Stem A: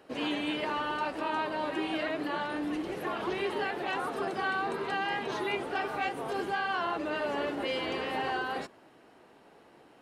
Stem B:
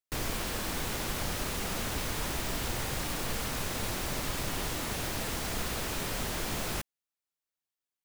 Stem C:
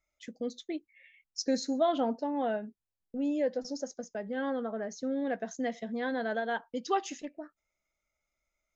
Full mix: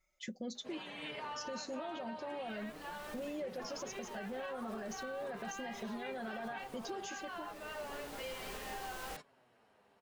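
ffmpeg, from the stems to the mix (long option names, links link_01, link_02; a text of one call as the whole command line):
ffmpeg -i stem1.wav -i stem2.wav -i stem3.wav -filter_complex "[0:a]equalizer=frequency=320:width=4.8:gain=-14,flanger=delay=4.9:depth=5.1:regen=44:speed=0.37:shape=sinusoidal,adelay=550,volume=-6dB[link_01];[1:a]equalizer=frequency=130:width=1:gain=-12,adelay=2350,volume=-11dB[link_02];[2:a]aecho=1:1:5.4:0.97,volume=0.5dB,asplit=2[link_03][link_04];[link_04]apad=whole_len=458242[link_05];[link_02][link_05]sidechaincompress=threshold=-37dB:ratio=8:attack=16:release=1290[link_06];[link_06][link_03]amix=inputs=2:normalize=0,alimiter=level_in=8.5dB:limit=-24dB:level=0:latency=1,volume=-8.5dB,volume=0dB[link_07];[link_01][link_07]amix=inputs=2:normalize=0,alimiter=level_in=9.5dB:limit=-24dB:level=0:latency=1:release=247,volume=-9.5dB" out.wav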